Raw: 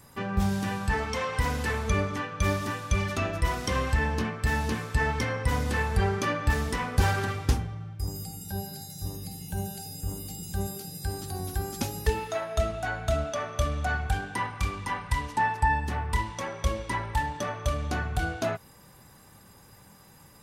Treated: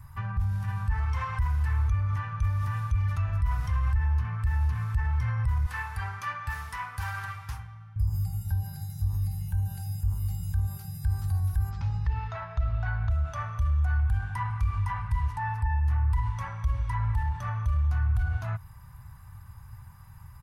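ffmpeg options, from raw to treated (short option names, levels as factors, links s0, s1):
-filter_complex "[0:a]asettb=1/sr,asplit=3[s0][s1][s2];[s0]atrim=end=5.664[s3];[s1]atrim=start=5.66:end=7.96,asetpts=PTS-STARTPTS,afade=t=in:d=0.004:c=qsin,afade=t=out:st=2.296:d=0.004:c=qsin,highpass=f=1100:p=1[s4];[s2]atrim=start=7.956[s5];[s3][s4]acrossfade=d=0.004:c1=hsin:c2=qsin[s6];[s6][s5]acrossfade=d=0.004:c1=qsin:c2=hsin,asplit=3[s7][s8][s9];[s7]afade=t=out:st=11.69:d=0.02[s10];[s8]lowpass=f=5100:w=0.5412,lowpass=f=5100:w=1.3066,afade=t=in:st=11.69:d=0.02,afade=t=out:st=13.1:d=0.02[s11];[s9]afade=t=in:st=13.1:d=0.02[s12];[s10][s11][s12]amix=inputs=3:normalize=0,bass=f=250:g=12,treble=f=4000:g=1,alimiter=limit=0.0891:level=0:latency=1:release=69,firequalizer=gain_entry='entry(100,0);entry(210,-23);entry(360,-27);entry(960,-1);entry(3400,-14);entry(5200,-14);entry(7700,-16);entry(11000,-9)':delay=0.05:min_phase=1,volume=1.41"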